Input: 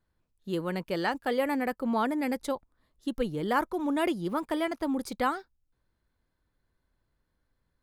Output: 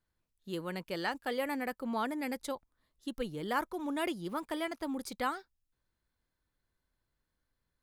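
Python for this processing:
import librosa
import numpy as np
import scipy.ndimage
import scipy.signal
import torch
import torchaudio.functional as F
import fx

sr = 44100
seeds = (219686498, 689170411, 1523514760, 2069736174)

y = fx.tilt_shelf(x, sr, db=-3.0, hz=1500.0)
y = F.gain(torch.from_numpy(y), -4.5).numpy()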